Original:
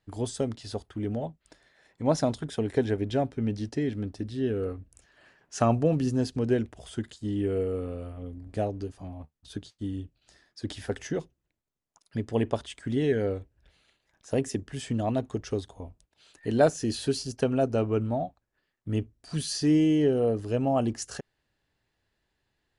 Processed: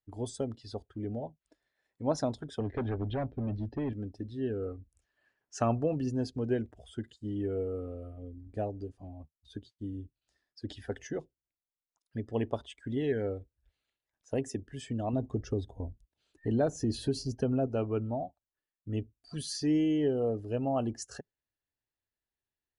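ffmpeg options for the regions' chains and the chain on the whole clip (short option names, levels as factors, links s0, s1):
-filter_complex "[0:a]asettb=1/sr,asplit=3[s0][s1][s2];[s0]atrim=end=2.604[s3];[s1]atrim=start=2.6:end=3.93,asetpts=PTS-STARTPTS,afade=t=in:d=0.004:c=qsin,afade=t=out:st=1.326:d=0.004:c=qsin,lowshelf=f=140:g=10,volume=15.8,asoftclip=hard,volume=0.0631,lowpass=f=4100:w=0.5412,lowpass=f=4100:w=1.3066[s4];[s2]atrim=start=3.926[s5];[s3][s4]acrossfade=d=0.004:c1=hsin:c2=qsin[s6];[s6][s5]acrossfade=d=0.004:c1=qsin:c2=hsin,asettb=1/sr,asplit=3[s7][s8][s9];[s7]atrim=end=15.134[s10];[s8]atrim=start=15.13:end=17.67,asetpts=PTS-STARTPTS,afade=t=in:d=0.004:c=qsin,afade=t=out:st=2.536:d=0.004:c=qsin,lowshelf=f=450:g=10,acompressor=threshold=0.0794:ratio=2:attack=3.2:release=140:knee=1:detection=peak[s11];[s9]atrim=start=17.666[s12];[s10][s11]acrossfade=d=0.004:c1=hsin:c2=qsin[s13];[s13][s12]acrossfade=d=0.004:c1=qsin:c2=hsin,afftdn=nr=14:nf=-45,equalizer=f=170:w=6.3:g=-8,volume=0.562"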